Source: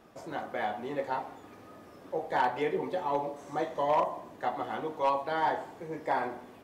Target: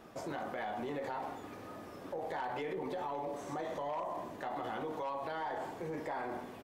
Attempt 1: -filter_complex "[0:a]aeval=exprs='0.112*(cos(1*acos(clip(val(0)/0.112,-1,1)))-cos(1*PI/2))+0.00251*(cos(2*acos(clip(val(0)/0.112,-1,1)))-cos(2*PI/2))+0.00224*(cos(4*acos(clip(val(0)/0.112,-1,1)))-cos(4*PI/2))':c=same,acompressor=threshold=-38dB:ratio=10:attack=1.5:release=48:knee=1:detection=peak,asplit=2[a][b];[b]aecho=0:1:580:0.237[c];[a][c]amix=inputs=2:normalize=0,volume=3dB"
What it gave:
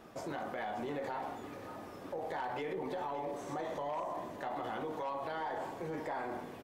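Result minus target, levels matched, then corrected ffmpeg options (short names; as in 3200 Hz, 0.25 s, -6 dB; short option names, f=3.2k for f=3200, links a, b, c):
echo-to-direct +8.5 dB
-filter_complex "[0:a]aeval=exprs='0.112*(cos(1*acos(clip(val(0)/0.112,-1,1)))-cos(1*PI/2))+0.00251*(cos(2*acos(clip(val(0)/0.112,-1,1)))-cos(2*PI/2))+0.00224*(cos(4*acos(clip(val(0)/0.112,-1,1)))-cos(4*PI/2))':c=same,acompressor=threshold=-38dB:ratio=10:attack=1.5:release=48:knee=1:detection=peak,asplit=2[a][b];[b]aecho=0:1:580:0.0891[c];[a][c]amix=inputs=2:normalize=0,volume=3dB"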